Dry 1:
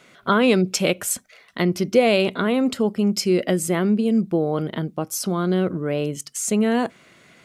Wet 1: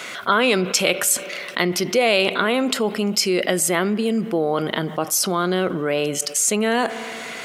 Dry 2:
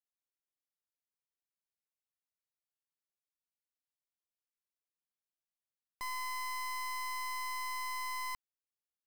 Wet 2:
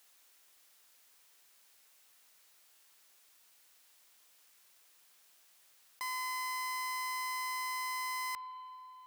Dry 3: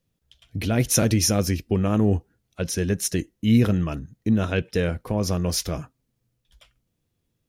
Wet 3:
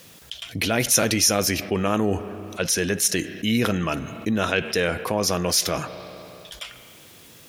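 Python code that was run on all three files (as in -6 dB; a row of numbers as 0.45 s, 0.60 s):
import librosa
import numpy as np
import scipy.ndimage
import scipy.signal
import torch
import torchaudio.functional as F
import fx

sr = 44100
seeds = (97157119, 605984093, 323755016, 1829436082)

y = fx.highpass(x, sr, hz=200.0, slope=6)
y = fx.low_shelf(y, sr, hz=490.0, db=-10.5)
y = fx.rev_spring(y, sr, rt60_s=1.9, pass_ms=(31, 50), chirp_ms=40, drr_db=20.0)
y = fx.env_flatten(y, sr, amount_pct=50)
y = y * 10.0 ** (2.5 / 20.0)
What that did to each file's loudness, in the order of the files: +1.5 LU, +1.5 LU, +1.0 LU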